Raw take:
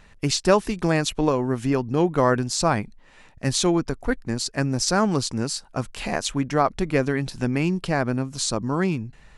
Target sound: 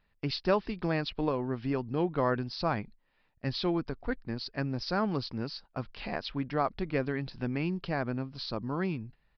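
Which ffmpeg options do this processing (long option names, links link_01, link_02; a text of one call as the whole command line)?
ffmpeg -i in.wav -af "agate=range=-12dB:threshold=-38dB:ratio=16:detection=peak,aresample=11025,aresample=44100,volume=-9dB" out.wav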